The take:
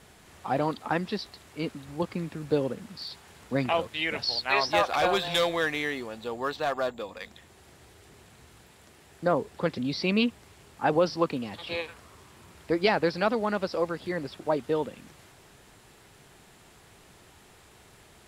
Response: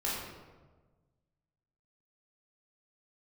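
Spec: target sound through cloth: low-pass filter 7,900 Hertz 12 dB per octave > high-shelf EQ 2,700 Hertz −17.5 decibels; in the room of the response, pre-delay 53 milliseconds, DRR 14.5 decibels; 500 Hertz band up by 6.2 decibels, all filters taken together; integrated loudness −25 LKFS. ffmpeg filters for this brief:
-filter_complex "[0:a]equalizer=frequency=500:width_type=o:gain=8,asplit=2[link_01][link_02];[1:a]atrim=start_sample=2205,adelay=53[link_03];[link_02][link_03]afir=irnorm=-1:irlink=0,volume=-21dB[link_04];[link_01][link_04]amix=inputs=2:normalize=0,lowpass=7900,highshelf=frequency=2700:gain=-17.5"

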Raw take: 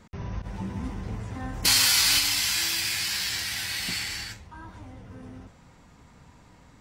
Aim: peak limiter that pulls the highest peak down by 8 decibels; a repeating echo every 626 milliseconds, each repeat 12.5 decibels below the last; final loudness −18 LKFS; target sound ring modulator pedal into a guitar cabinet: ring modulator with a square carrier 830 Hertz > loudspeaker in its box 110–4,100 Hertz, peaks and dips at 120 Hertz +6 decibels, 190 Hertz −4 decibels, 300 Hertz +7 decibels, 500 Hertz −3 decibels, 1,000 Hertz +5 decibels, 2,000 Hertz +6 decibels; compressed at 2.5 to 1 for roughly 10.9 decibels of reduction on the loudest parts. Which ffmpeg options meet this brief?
ffmpeg -i in.wav -af "acompressor=threshold=-34dB:ratio=2.5,alimiter=limit=-24dB:level=0:latency=1,aecho=1:1:626|1252|1878:0.237|0.0569|0.0137,aeval=exprs='val(0)*sgn(sin(2*PI*830*n/s))':channel_layout=same,highpass=110,equalizer=frequency=120:width_type=q:width=4:gain=6,equalizer=frequency=190:width_type=q:width=4:gain=-4,equalizer=frequency=300:width_type=q:width=4:gain=7,equalizer=frequency=500:width_type=q:width=4:gain=-3,equalizer=frequency=1000:width_type=q:width=4:gain=5,equalizer=frequency=2000:width_type=q:width=4:gain=6,lowpass=frequency=4100:width=0.5412,lowpass=frequency=4100:width=1.3066,volume=17.5dB" out.wav

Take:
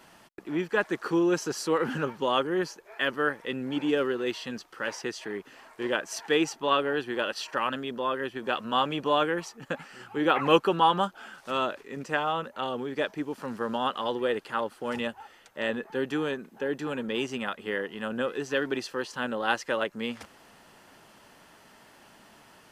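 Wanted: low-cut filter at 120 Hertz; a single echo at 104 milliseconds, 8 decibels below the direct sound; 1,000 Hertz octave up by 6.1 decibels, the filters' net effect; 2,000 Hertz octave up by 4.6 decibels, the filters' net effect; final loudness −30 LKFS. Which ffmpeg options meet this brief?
ffmpeg -i in.wav -af "highpass=120,equalizer=frequency=1000:width_type=o:gain=6.5,equalizer=frequency=2000:width_type=o:gain=3.5,aecho=1:1:104:0.398,volume=-4.5dB" out.wav

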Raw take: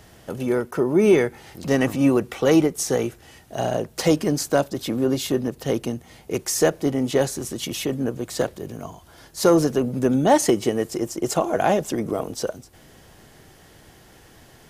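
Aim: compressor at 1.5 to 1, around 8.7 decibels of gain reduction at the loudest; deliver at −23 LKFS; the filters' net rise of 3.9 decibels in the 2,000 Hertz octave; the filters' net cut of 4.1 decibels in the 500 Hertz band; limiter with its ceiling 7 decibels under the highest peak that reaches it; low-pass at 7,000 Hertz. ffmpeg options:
ffmpeg -i in.wav -af "lowpass=7000,equalizer=frequency=500:width_type=o:gain=-5.5,equalizer=frequency=2000:width_type=o:gain=5,acompressor=threshold=-39dB:ratio=1.5,volume=10dB,alimiter=limit=-10.5dB:level=0:latency=1" out.wav

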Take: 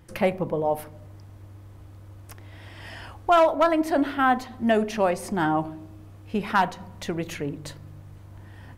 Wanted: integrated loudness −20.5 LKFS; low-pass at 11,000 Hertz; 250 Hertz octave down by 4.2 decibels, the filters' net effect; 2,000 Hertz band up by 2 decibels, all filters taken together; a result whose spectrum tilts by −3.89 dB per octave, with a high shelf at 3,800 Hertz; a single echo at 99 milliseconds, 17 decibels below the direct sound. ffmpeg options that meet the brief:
ffmpeg -i in.wav -af "lowpass=11000,equalizer=frequency=250:width_type=o:gain=-5.5,equalizer=frequency=2000:width_type=o:gain=4.5,highshelf=frequency=3800:gain=-8,aecho=1:1:99:0.141,volume=4.5dB" out.wav

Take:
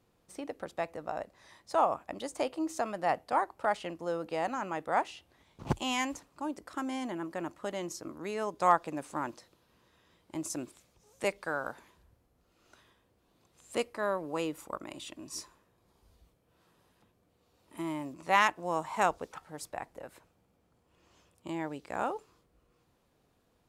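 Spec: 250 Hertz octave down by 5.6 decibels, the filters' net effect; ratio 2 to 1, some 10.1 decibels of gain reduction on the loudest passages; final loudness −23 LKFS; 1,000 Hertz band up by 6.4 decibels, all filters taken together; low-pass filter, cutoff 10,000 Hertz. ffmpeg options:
ffmpeg -i in.wav -af "lowpass=10000,equalizer=frequency=250:width_type=o:gain=-8.5,equalizer=frequency=1000:width_type=o:gain=8.5,acompressor=threshold=-32dB:ratio=2,volume=13dB" out.wav

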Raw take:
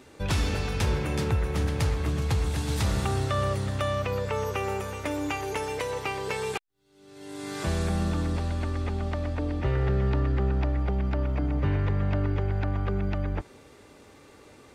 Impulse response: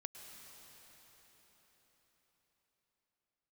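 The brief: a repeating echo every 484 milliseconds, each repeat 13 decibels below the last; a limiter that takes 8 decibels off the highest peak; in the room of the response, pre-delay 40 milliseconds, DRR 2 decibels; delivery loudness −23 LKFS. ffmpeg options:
-filter_complex "[0:a]alimiter=level_in=0.5dB:limit=-24dB:level=0:latency=1,volume=-0.5dB,aecho=1:1:484|968|1452:0.224|0.0493|0.0108,asplit=2[link_01][link_02];[1:a]atrim=start_sample=2205,adelay=40[link_03];[link_02][link_03]afir=irnorm=-1:irlink=0,volume=1.5dB[link_04];[link_01][link_04]amix=inputs=2:normalize=0,volume=8dB"

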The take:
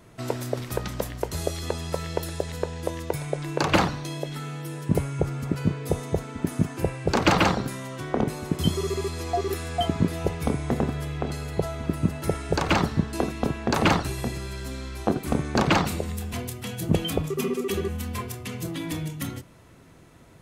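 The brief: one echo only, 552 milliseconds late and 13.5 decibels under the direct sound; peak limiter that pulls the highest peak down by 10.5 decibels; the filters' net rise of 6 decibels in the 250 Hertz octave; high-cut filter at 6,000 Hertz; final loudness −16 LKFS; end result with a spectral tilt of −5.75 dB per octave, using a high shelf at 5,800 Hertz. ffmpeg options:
ffmpeg -i in.wav -af "lowpass=6000,equalizer=frequency=250:width_type=o:gain=8,highshelf=frequency=5800:gain=7.5,alimiter=limit=-12dB:level=0:latency=1,aecho=1:1:552:0.211,volume=10.5dB" out.wav

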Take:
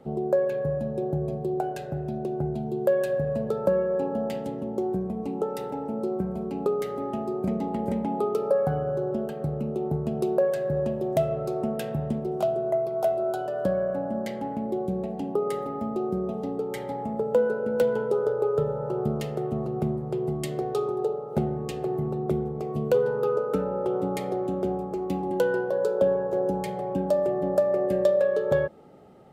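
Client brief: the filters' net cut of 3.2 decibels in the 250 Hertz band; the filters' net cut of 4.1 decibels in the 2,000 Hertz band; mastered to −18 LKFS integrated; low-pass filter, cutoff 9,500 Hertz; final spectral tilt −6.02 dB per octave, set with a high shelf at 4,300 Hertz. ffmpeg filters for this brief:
ffmpeg -i in.wav -af "lowpass=9500,equalizer=frequency=250:width_type=o:gain=-5,equalizer=frequency=2000:width_type=o:gain=-6.5,highshelf=frequency=4300:gain=3,volume=11dB" out.wav

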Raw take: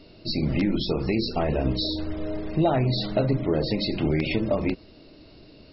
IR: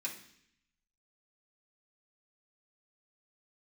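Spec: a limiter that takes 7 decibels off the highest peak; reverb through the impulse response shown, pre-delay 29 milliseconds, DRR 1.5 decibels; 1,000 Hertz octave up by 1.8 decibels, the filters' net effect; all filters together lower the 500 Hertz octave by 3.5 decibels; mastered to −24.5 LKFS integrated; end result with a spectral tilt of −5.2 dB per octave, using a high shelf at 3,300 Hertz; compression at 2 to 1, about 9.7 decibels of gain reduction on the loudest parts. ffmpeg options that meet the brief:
-filter_complex "[0:a]equalizer=frequency=500:width_type=o:gain=-7,equalizer=frequency=1000:width_type=o:gain=7,highshelf=frequency=3300:gain=-6,acompressor=threshold=-38dB:ratio=2,alimiter=level_in=5dB:limit=-24dB:level=0:latency=1,volume=-5dB,asplit=2[link_01][link_02];[1:a]atrim=start_sample=2205,adelay=29[link_03];[link_02][link_03]afir=irnorm=-1:irlink=0,volume=-2dB[link_04];[link_01][link_04]amix=inputs=2:normalize=0,volume=12dB"

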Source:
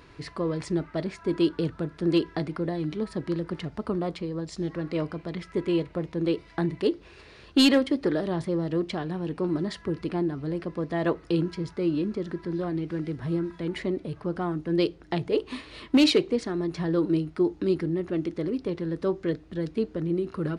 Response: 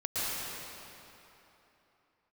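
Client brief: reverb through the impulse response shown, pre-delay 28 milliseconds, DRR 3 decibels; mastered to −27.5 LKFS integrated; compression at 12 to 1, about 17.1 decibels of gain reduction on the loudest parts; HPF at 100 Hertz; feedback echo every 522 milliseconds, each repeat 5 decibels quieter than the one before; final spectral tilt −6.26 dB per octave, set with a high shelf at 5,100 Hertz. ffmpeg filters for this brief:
-filter_complex "[0:a]highpass=100,highshelf=frequency=5100:gain=-5,acompressor=threshold=-33dB:ratio=12,aecho=1:1:522|1044|1566|2088|2610|3132|3654:0.562|0.315|0.176|0.0988|0.0553|0.031|0.0173,asplit=2[link_01][link_02];[1:a]atrim=start_sample=2205,adelay=28[link_03];[link_02][link_03]afir=irnorm=-1:irlink=0,volume=-11.5dB[link_04];[link_01][link_04]amix=inputs=2:normalize=0,volume=8dB"

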